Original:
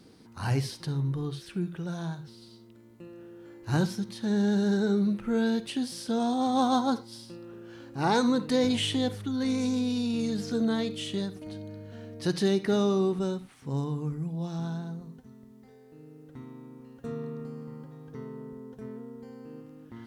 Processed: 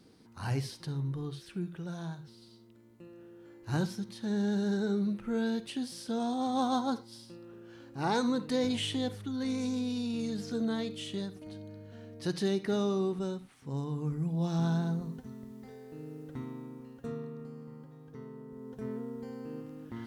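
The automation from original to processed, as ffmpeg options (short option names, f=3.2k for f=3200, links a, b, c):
-af "volume=14dB,afade=t=in:st=13.84:d=1.03:silence=0.298538,afade=t=out:st=16.14:d=1.15:silence=0.281838,afade=t=in:st=18.48:d=0.42:silence=0.375837"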